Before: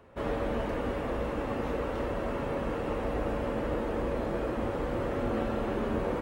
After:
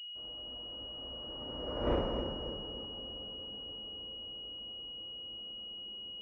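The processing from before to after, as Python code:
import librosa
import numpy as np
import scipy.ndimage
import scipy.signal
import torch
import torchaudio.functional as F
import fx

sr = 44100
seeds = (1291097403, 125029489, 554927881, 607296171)

y = fx.doppler_pass(x, sr, speed_mps=22, closest_m=1.5, pass_at_s=1.93)
y = fx.echo_split(y, sr, split_hz=560.0, low_ms=279, high_ms=129, feedback_pct=52, wet_db=-7.5)
y = fx.pwm(y, sr, carrier_hz=2900.0)
y = F.gain(torch.from_numpy(y), 3.5).numpy()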